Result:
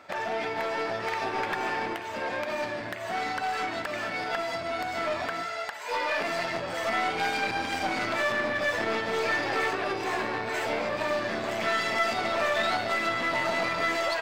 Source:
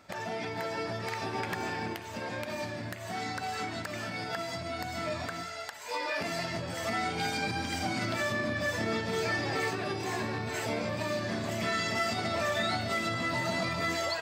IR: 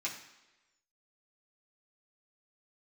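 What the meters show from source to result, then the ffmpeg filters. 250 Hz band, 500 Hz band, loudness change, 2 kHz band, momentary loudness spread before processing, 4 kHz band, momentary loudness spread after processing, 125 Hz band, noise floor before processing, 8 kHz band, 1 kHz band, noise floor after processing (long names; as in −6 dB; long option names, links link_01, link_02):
−1.0 dB, +4.5 dB, +4.0 dB, +5.0 dB, 7 LU, +2.0 dB, 5 LU, −7.0 dB, −41 dBFS, −1.5 dB, +5.5 dB, −36 dBFS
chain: -af "aeval=exprs='clip(val(0),-1,0.0141)':channel_layout=same,bass=frequency=250:gain=-14,treble=frequency=4000:gain=-10,volume=8dB"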